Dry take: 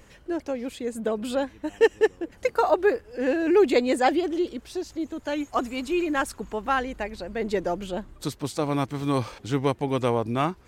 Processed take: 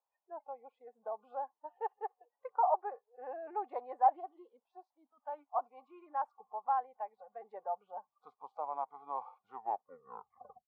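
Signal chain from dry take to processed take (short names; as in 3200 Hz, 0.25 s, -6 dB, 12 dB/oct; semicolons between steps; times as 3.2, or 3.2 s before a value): tape stop at the end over 1.22 s; Butterworth band-pass 840 Hz, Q 2.6; spectral noise reduction 23 dB; gain -3 dB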